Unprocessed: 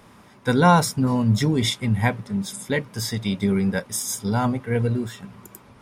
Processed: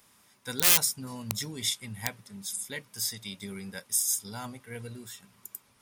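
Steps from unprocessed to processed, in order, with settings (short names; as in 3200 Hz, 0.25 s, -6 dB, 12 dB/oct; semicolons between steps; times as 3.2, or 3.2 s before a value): wrapped overs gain 9 dB; pre-emphasis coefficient 0.9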